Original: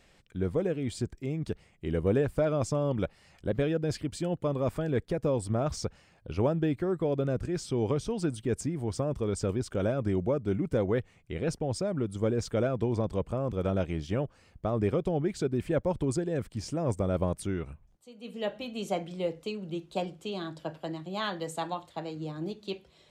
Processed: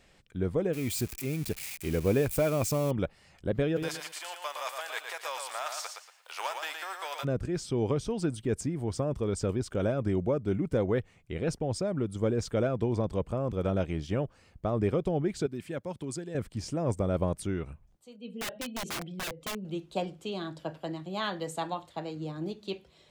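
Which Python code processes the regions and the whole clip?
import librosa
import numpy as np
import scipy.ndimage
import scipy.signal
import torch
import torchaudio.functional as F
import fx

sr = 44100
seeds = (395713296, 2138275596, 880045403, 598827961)

y = fx.chain(x, sr, fx.crossing_spikes(level_db=-29.5),
    fx.peak_eq(hz=2400.0, db=9.0, octaves=0.23), at=(0.73, 2.91))
y = fx.envelope_flatten(y, sr, power=0.6, at=(3.76, 7.23), fade=0.02)
y = fx.highpass(y, sr, hz=780.0, slope=24, at=(3.76, 7.23), fade=0.02)
y = fx.echo_feedback(y, sr, ms=116, feedback_pct=26, wet_db=-5.5, at=(3.76, 7.23), fade=0.02)
y = fx.chain(y, sr, fx.highpass(hz=180.0, slope=12),
    fx.peak_eq(hz=530.0, db=-9.0, octaves=3.0), at=(15.46, 16.35))
y = fx.chain(y, sr, fx.spec_expand(power=1.5),
    fx.peak_eq(hz=3500.0, db=6.5, octaves=2.0),
    fx.overflow_wrap(gain_db=30.0), at=(18.16, 19.65))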